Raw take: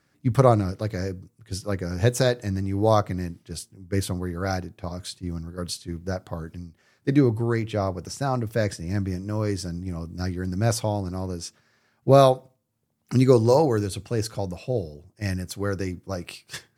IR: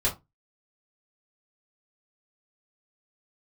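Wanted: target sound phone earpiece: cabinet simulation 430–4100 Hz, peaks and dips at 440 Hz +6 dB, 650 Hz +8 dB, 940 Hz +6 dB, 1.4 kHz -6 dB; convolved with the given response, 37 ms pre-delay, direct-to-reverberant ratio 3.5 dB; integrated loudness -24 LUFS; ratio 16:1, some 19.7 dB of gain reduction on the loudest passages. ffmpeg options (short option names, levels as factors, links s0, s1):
-filter_complex "[0:a]acompressor=threshold=0.0316:ratio=16,asplit=2[s0][s1];[1:a]atrim=start_sample=2205,adelay=37[s2];[s1][s2]afir=irnorm=-1:irlink=0,volume=0.224[s3];[s0][s3]amix=inputs=2:normalize=0,highpass=430,equalizer=f=440:t=q:w=4:g=6,equalizer=f=650:t=q:w=4:g=8,equalizer=f=940:t=q:w=4:g=6,equalizer=f=1400:t=q:w=4:g=-6,lowpass=f=4100:w=0.5412,lowpass=f=4100:w=1.3066,volume=3.98"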